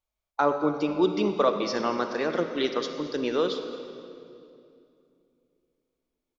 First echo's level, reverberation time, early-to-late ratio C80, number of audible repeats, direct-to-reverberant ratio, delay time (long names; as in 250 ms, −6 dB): −19.0 dB, 2.6 s, 8.0 dB, 1, 7.0 dB, 218 ms